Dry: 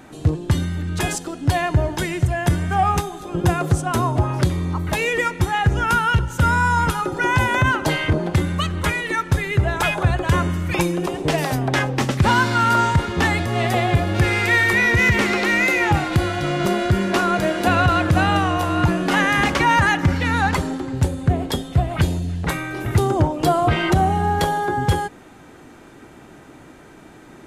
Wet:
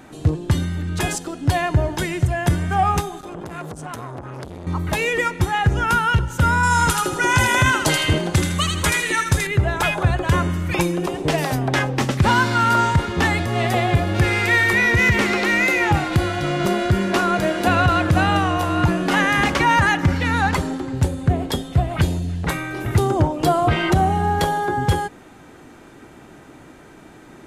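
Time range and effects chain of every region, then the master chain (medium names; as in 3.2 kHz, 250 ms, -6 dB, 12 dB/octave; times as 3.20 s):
3.19–4.67 s: compression 10:1, threshold -24 dBFS + transformer saturation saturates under 890 Hz
6.63–9.47 s: peaking EQ 8 kHz +10 dB 1.8 oct + feedback echo behind a high-pass 80 ms, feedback 34%, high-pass 1.6 kHz, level -3 dB
whole clip: none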